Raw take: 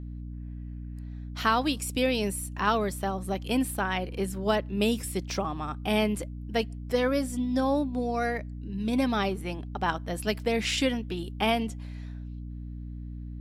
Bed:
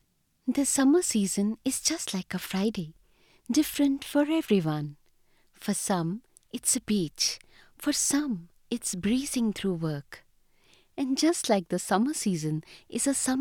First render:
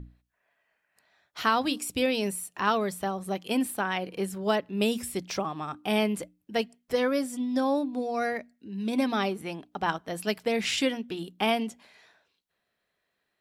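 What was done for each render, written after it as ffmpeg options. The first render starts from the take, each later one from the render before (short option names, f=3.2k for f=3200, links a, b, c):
-af "bandreject=f=60:t=h:w=6,bandreject=f=120:t=h:w=6,bandreject=f=180:t=h:w=6,bandreject=f=240:t=h:w=6,bandreject=f=300:t=h:w=6"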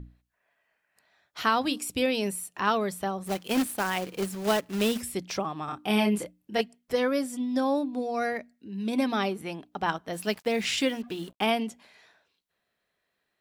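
-filter_complex "[0:a]asettb=1/sr,asplit=3[a][b][c];[a]atrim=end=3.264[d];[b]atrim=start=3.26:end=5.01,asetpts=PTS-STARTPTS,afade=t=in:d=0.004:c=qsin,afade=t=out:st=1.746:d=0.004:c=qsin,acrusher=bits=2:mode=log:mix=0:aa=0.000001[e];[c]atrim=start=5.006[f];[d][e]acrossfade=d=0.004:c1=hsin:c2=qsin[g];[g][f]acrossfade=d=0.004:c1=qsin:c2=hsin,asettb=1/sr,asplit=3[h][i][j];[h]atrim=end=5.654[k];[i]atrim=start=5.65:end=6.61,asetpts=PTS-STARTPTS,afade=t=in:d=0.004:c=qsin,afade=t=out:st=0.956:d=0.004:c=qsin,asplit=2[l][m];[m]adelay=29,volume=-3dB[n];[l][n]amix=inputs=2:normalize=0,atrim=end_sample=42336[o];[j]atrim=start=6.606[p];[k][o]acrossfade=d=0.004:c1=hsin:c2=qsin[q];[q][p]acrossfade=d=0.004:c1=qsin:c2=hsin,asplit=3[r][s][t];[r]afade=t=out:st=10.12:d=0.02[u];[s]acrusher=bits=7:mix=0:aa=0.5,afade=t=in:st=10.12:d=0.02,afade=t=out:st=11.45:d=0.02[v];[t]afade=t=in:st=11.45:d=0.02[w];[u][v][w]amix=inputs=3:normalize=0"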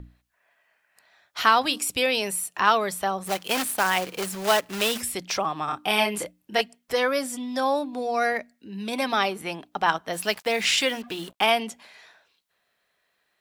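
-filter_complex "[0:a]acrossover=split=540[a][b];[a]alimiter=level_in=5.5dB:limit=-24dB:level=0:latency=1,volume=-5.5dB[c];[b]acontrast=87[d];[c][d]amix=inputs=2:normalize=0"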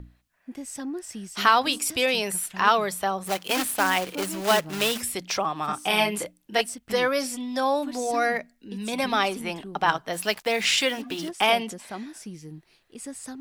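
-filter_complex "[1:a]volume=-11.5dB[a];[0:a][a]amix=inputs=2:normalize=0"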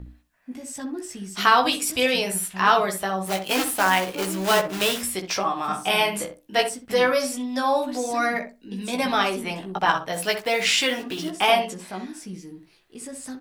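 -filter_complex "[0:a]asplit=2[a][b];[b]adelay=16,volume=-3.5dB[c];[a][c]amix=inputs=2:normalize=0,asplit=2[d][e];[e]adelay=63,lowpass=f=1.2k:p=1,volume=-6.5dB,asplit=2[f][g];[g]adelay=63,lowpass=f=1.2k:p=1,volume=0.2,asplit=2[h][i];[i]adelay=63,lowpass=f=1.2k:p=1,volume=0.2[j];[f][h][j]amix=inputs=3:normalize=0[k];[d][k]amix=inputs=2:normalize=0"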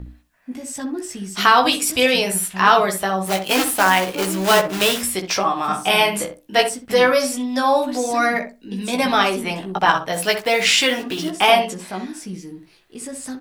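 -af "volume=5dB,alimiter=limit=-2dB:level=0:latency=1"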